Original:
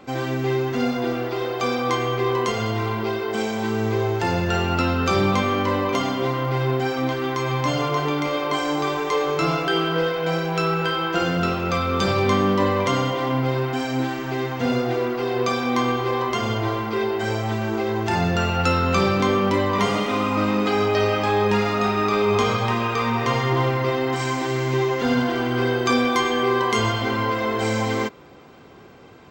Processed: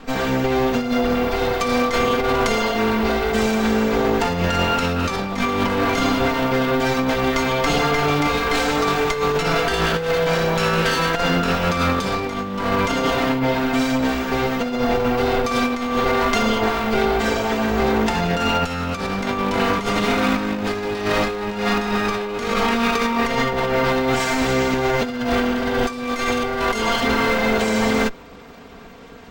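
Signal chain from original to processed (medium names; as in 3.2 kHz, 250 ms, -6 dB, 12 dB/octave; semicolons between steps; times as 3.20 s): comb filter that takes the minimum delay 4.3 ms; bass shelf 91 Hz +7 dB; compressor with a negative ratio -24 dBFS, ratio -0.5; trim +5 dB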